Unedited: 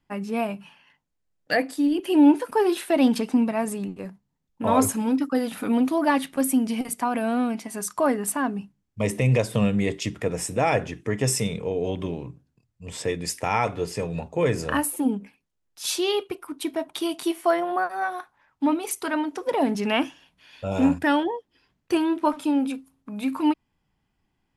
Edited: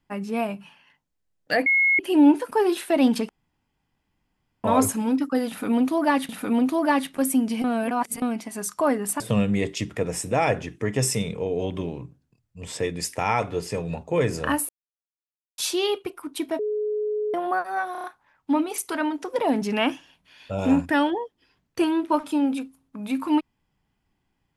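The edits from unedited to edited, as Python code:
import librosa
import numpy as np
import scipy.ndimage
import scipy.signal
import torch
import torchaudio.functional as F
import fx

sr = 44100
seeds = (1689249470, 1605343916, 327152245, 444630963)

y = fx.edit(x, sr, fx.bleep(start_s=1.66, length_s=0.33, hz=2170.0, db=-16.0),
    fx.room_tone_fill(start_s=3.29, length_s=1.35),
    fx.repeat(start_s=5.48, length_s=0.81, count=2),
    fx.reverse_span(start_s=6.83, length_s=0.58),
    fx.cut(start_s=8.39, length_s=1.06),
    fx.silence(start_s=14.94, length_s=0.89),
    fx.bleep(start_s=16.84, length_s=0.75, hz=423.0, db=-23.0),
    fx.stutter(start_s=18.17, slice_s=0.03, count=5), tone=tone)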